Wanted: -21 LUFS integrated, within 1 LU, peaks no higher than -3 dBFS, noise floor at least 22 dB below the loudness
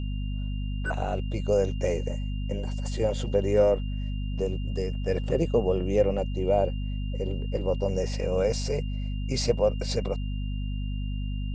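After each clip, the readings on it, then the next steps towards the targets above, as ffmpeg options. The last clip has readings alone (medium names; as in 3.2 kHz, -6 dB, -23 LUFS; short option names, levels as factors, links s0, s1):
hum 50 Hz; highest harmonic 250 Hz; hum level -28 dBFS; steady tone 2.8 kHz; tone level -48 dBFS; loudness -28.5 LUFS; peak level -9.5 dBFS; loudness target -21.0 LUFS
-> -af "bandreject=f=50:t=h:w=4,bandreject=f=100:t=h:w=4,bandreject=f=150:t=h:w=4,bandreject=f=200:t=h:w=4,bandreject=f=250:t=h:w=4"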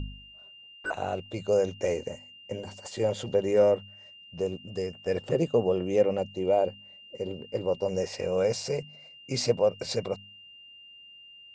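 hum not found; steady tone 2.8 kHz; tone level -48 dBFS
-> -af "bandreject=f=2800:w=30"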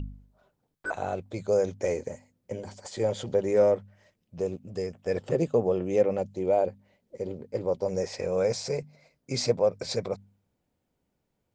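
steady tone not found; loudness -28.5 LUFS; peak level -11.0 dBFS; loudness target -21.0 LUFS
-> -af "volume=2.37"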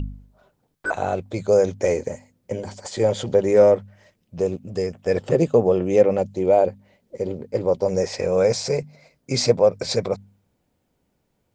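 loudness -21.5 LUFS; peak level -3.5 dBFS; noise floor -71 dBFS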